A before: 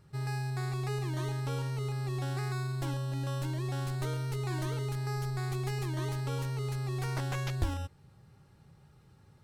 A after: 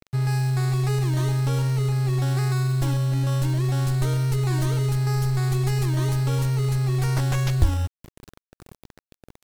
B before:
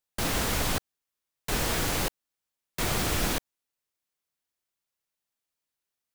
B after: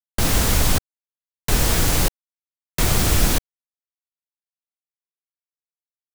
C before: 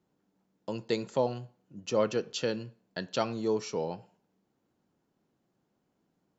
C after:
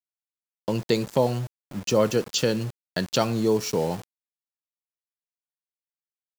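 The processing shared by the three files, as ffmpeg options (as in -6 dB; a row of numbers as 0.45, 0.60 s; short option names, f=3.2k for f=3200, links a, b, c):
-filter_complex "[0:a]lowshelf=f=150:g=10,asplit=2[a][b];[b]acompressor=threshold=-34dB:ratio=10,volume=1.5dB[c];[a][c]amix=inputs=2:normalize=0,aeval=exprs='val(0)*gte(abs(val(0)),0.0112)':c=same,adynamicequalizer=threshold=0.00562:dfrequency=4300:dqfactor=0.7:tfrequency=4300:tqfactor=0.7:attack=5:release=100:ratio=0.375:range=2.5:mode=boostabove:tftype=highshelf,volume=3dB"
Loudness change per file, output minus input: +11.5, +8.5, +7.0 LU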